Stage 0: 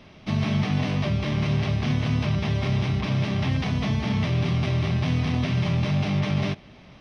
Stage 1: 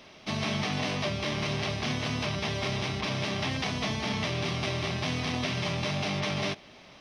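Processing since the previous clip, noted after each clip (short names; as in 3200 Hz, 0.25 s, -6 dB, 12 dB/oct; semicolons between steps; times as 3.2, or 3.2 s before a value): tone controls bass -12 dB, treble +7 dB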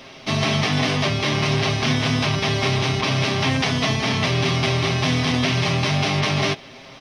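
comb 7.5 ms, depth 50%; gain +9 dB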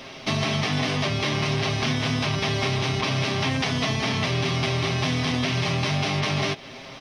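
compressor 3:1, threshold -24 dBFS, peak gain reduction 6.5 dB; gain +1.5 dB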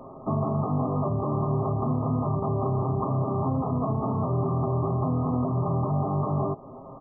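brick-wall FIR low-pass 1300 Hz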